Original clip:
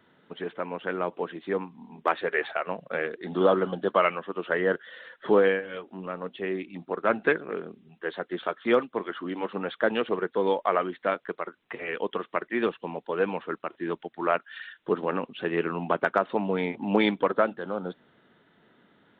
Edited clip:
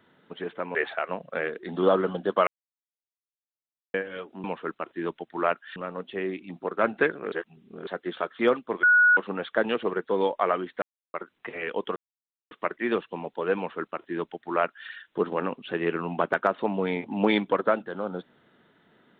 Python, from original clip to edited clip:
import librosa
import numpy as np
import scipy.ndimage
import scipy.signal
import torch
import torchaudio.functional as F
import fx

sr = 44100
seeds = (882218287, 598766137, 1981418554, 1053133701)

y = fx.edit(x, sr, fx.cut(start_s=0.75, length_s=1.58),
    fx.silence(start_s=4.05, length_s=1.47),
    fx.reverse_span(start_s=7.58, length_s=0.55),
    fx.bleep(start_s=9.09, length_s=0.34, hz=1460.0, db=-14.5),
    fx.silence(start_s=11.08, length_s=0.32),
    fx.insert_silence(at_s=12.22, length_s=0.55),
    fx.duplicate(start_s=13.28, length_s=1.32, to_s=6.02), tone=tone)